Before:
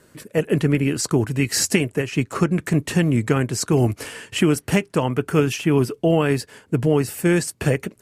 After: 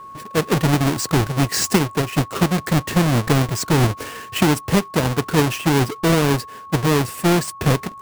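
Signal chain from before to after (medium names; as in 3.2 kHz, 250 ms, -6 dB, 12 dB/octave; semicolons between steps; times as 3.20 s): square wave that keeps the level; whistle 1.1 kHz -32 dBFS; trim -3 dB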